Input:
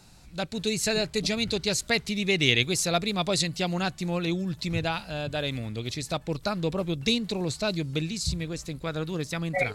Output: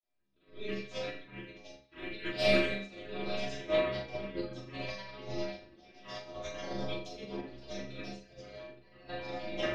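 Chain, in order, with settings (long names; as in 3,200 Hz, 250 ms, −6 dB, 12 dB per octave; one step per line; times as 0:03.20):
ceiling on every frequency bin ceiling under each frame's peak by 23 dB
Butterworth low-pass 4,000 Hz 36 dB per octave
parametric band 450 Hz +9 dB 0.71 octaves
soft clipping −9 dBFS, distortion −26 dB
multi-voice chorus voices 2, 0.8 Hz, delay 24 ms, depth 3.8 ms
rotating-speaker cabinet horn 0.75 Hz, later 6.3 Hz, at 0:05.97
granular cloud, pitch spread up and down by 7 semitones
stiff-string resonator 63 Hz, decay 0.56 s, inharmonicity 0.008
on a send: flutter between parallel walls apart 6.9 metres, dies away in 0.57 s
on the sum: rectangular room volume 400 cubic metres, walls furnished, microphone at 2.9 metres
expander for the loud parts 2.5 to 1, over −48 dBFS
level +6 dB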